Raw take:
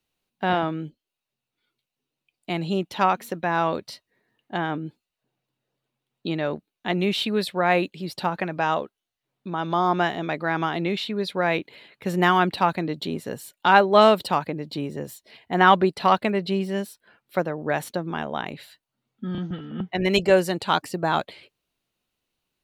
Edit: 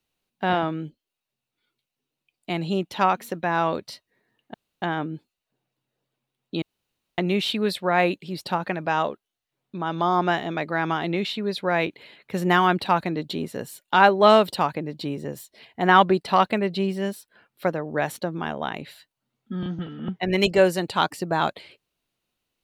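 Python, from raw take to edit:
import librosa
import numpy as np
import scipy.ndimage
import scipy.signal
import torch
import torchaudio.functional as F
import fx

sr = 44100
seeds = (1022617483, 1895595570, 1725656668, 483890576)

y = fx.edit(x, sr, fx.insert_room_tone(at_s=4.54, length_s=0.28),
    fx.room_tone_fill(start_s=6.34, length_s=0.56), tone=tone)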